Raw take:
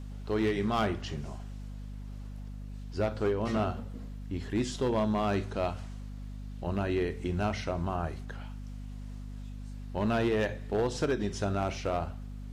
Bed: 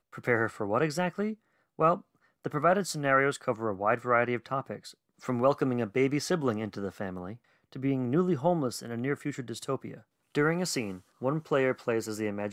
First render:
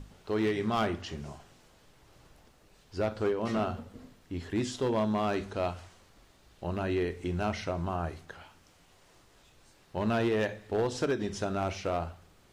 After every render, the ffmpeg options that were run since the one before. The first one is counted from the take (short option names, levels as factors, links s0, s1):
-af "bandreject=f=50:t=h:w=6,bandreject=f=100:t=h:w=6,bandreject=f=150:t=h:w=6,bandreject=f=200:t=h:w=6,bandreject=f=250:t=h:w=6"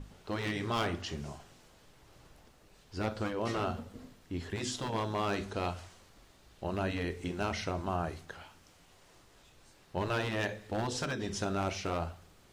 -af "afftfilt=real='re*lt(hypot(re,im),0.2)':imag='im*lt(hypot(re,im),0.2)':win_size=1024:overlap=0.75,adynamicequalizer=threshold=0.00355:dfrequency=3300:dqfactor=0.7:tfrequency=3300:tqfactor=0.7:attack=5:release=100:ratio=0.375:range=1.5:mode=boostabove:tftype=highshelf"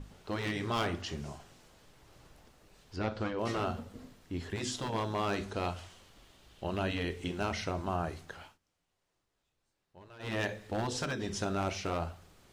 -filter_complex "[0:a]asettb=1/sr,asplit=3[s0][s1][s2];[s0]atrim=end=2.964[s3];[s1]atrim=start=2.96:end=3.39,asetpts=PTS-STARTPTS,afade=t=in:d=0.004:c=qsin,afade=t=out:st=0.426:d=0.004:c=qsin,lowpass=4900[s4];[s2]atrim=start=3.386[s5];[s3][s4]acrossfade=d=0.004:c1=hsin:c2=qsin[s6];[s6][s5]acrossfade=d=0.004:c1=qsin:c2=hsin,asettb=1/sr,asplit=3[s7][s8][s9];[s7]atrim=end=5.764[s10];[s8]atrim=start=5.76:end=7.38,asetpts=PTS-STARTPTS,afade=t=in:d=0.004:c=qsin,afade=t=out:st=1.616:d=0.004:c=qsin,equalizer=f=3100:t=o:w=0.44:g=6.5[s11];[s9]atrim=start=7.376[s12];[s10][s11]acrossfade=d=0.004:c1=hsin:c2=qsin[s13];[s13][s12]acrossfade=d=0.004:c1=qsin:c2=hsin,asplit=3[s14][s15][s16];[s14]atrim=end=8.58,asetpts=PTS-STARTPTS,afade=t=out:st=8.45:d=0.13:silence=0.0891251[s17];[s15]atrim=start=8.58:end=10.19,asetpts=PTS-STARTPTS,volume=0.0891[s18];[s16]atrim=start=10.19,asetpts=PTS-STARTPTS,afade=t=in:d=0.13:silence=0.0891251[s19];[s17][s18][s19]concat=n=3:v=0:a=1"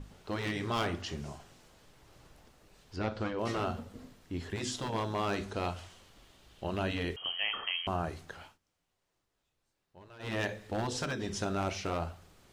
-filter_complex "[0:a]asettb=1/sr,asplit=3[s0][s1][s2];[s0]atrim=end=7.164[s3];[s1]atrim=start=7.16:end=7.87,asetpts=PTS-STARTPTS,afade=t=in:d=0.004:c=qsin,afade=t=out:st=0.706:d=0.004:c=qsin,lowpass=f=2800:t=q:w=0.5098,lowpass=f=2800:t=q:w=0.6013,lowpass=f=2800:t=q:w=0.9,lowpass=f=2800:t=q:w=2.563,afreqshift=-3300[s4];[s2]atrim=start=7.866[s5];[s3][s4]acrossfade=d=0.004:c1=hsin:c2=qsin[s6];[s6][s5]acrossfade=d=0.004:c1=qsin:c2=hsin"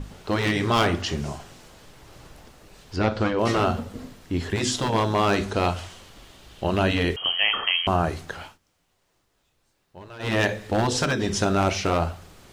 -af "volume=3.76"